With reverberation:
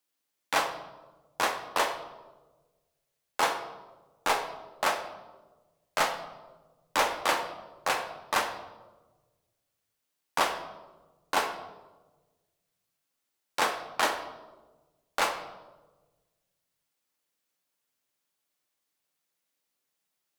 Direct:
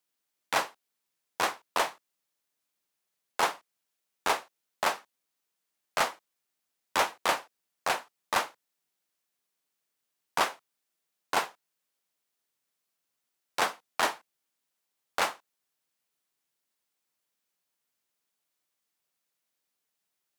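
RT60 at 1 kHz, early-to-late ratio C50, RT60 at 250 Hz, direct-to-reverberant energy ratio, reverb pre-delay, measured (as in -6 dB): 1.1 s, 8.0 dB, 1.6 s, 4.5 dB, 3 ms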